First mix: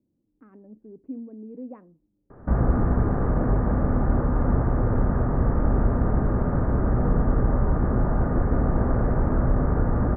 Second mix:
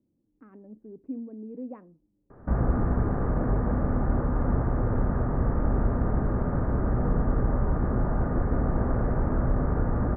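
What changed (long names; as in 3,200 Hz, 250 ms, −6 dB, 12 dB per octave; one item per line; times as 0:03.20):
background −3.5 dB
master: remove high-frequency loss of the air 95 metres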